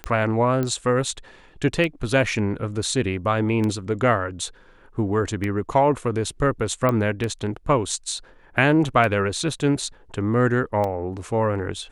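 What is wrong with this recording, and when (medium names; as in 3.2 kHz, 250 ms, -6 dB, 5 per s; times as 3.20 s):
tick 33 1/3 rpm -14 dBFS
0.63 s: pop -13 dBFS
6.89 s: pop -10 dBFS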